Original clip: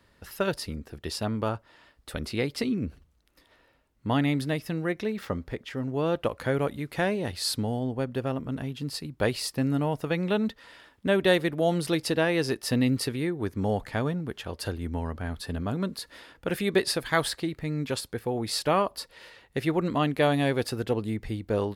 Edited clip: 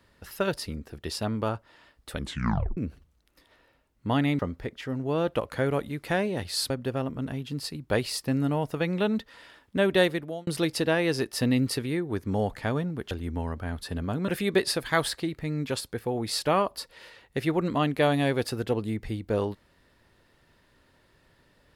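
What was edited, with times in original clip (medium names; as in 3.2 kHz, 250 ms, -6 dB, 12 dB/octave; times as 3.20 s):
2.17 s: tape stop 0.60 s
4.39–5.27 s: delete
7.58–8.00 s: delete
11.33–11.77 s: fade out linear
14.41–14.69 s: delete
15.86–16.48 s: delete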